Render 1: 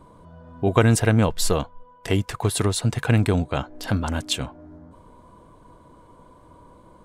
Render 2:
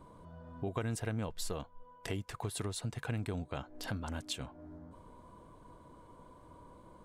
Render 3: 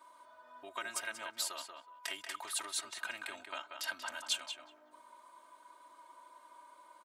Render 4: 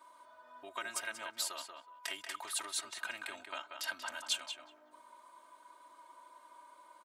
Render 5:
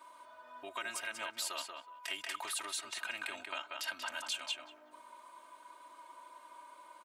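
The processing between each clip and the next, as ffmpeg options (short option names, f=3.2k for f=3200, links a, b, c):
-af "acompressor=threshold=-34dB:ratio=2.5,volume=-6dB"
-filter_complex "[0:a]highpass=1.2k,aecho=1:1:3.2:0.97,asplit=2[a][b];[b]adelay=185,lowpass=f=3k:p=1,volume=-5dB,asplit=2[c][d];[d]adelay=185,lowpass=f=3k:p=1,volume=0.15,asplit=2[e][f];[f]adelay=185,lowpass=f=3k:p=1,volume=0.15[g];[c][e][g]amix=inputs=3:normalize=0[h];[a][h]amix=inputs=2:normalize=0,volume=2.5dB"
-af anull
-af "alimiter=level_in=6.5dB:limit=-24dB:level=0:latency=1:release=127,volume=-6.5dB,equalizer=f=2.6k:t=o:w=0.48:g=5,volume=3dB"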